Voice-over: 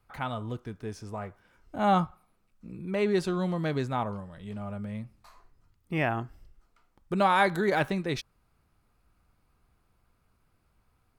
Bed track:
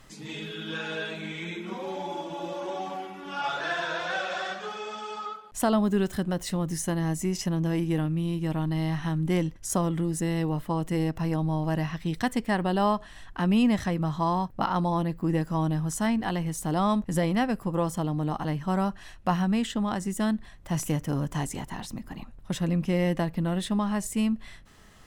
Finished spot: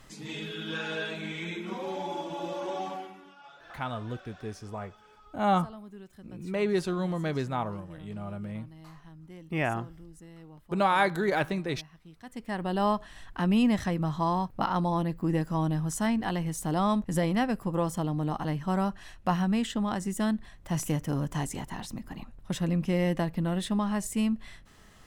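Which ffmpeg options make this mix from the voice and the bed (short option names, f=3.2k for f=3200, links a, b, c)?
-filter_complex "[0:a]adelay=3600,volume=-1dB[a];[1:a]volume=20dB,afade=t=out:st=2.85:d=0.5:silence=0.0841395,afade=t=in:st=12.23:d=0.67:silence=0.0944061[b];[a][b]amix=inputs=2:normalize=0"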